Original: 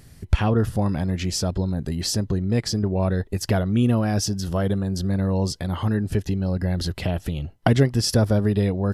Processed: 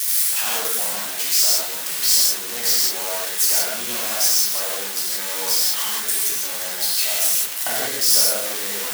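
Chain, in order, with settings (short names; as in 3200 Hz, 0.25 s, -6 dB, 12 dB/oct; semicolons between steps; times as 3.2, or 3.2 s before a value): switching spikes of -8 dBFS; HPF 750 Hz 12 dB/oct; non-linear reverb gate 0.21 s flat, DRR -6.5 dB; gain -6.5 dB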